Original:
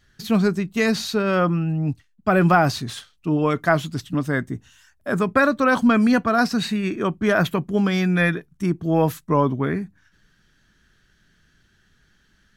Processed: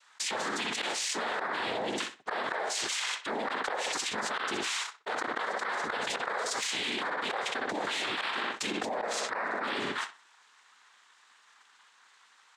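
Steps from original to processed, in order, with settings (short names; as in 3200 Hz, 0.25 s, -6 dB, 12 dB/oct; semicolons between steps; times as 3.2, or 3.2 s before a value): gate -50 dBFS, range -28 dB; HPF 590 Hz 24 dB/oct; noise vocoder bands 6; darkening echo 62 ms, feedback 25%, low-pass 4900 Hz, level -13 dB; flipped gate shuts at -14 dBFS, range -25 dB; harmoniser -5 st -16 dB; soft clip -16 dBFS, distortion -21 dB; fast leveller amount 100%; gain -8.5 dB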